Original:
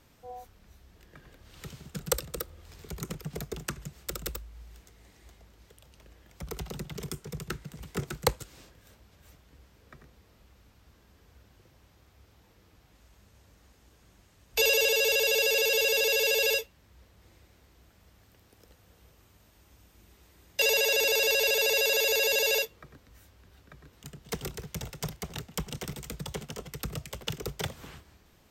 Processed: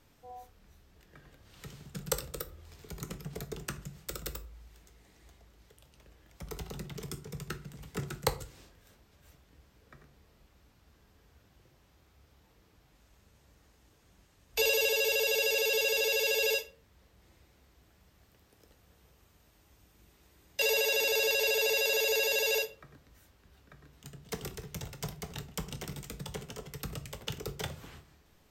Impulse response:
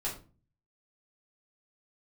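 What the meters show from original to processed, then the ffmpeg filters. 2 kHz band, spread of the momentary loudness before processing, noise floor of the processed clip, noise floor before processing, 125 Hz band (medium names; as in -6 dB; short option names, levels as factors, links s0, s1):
-3.5 dB, 18 LU, -65 dBFS, -62 dBFS, -3.0 dB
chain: -filter_complex "[0:a]asplit=2[s0][s1];[1:a]atrim=start_sample=2205,adelay=7[s2];[s1][s2]afir=irnorm=-1:irlink=0,volume=0.266[s3];[s0][s3]amix=inputs=2:normalize=0,volume=0.631"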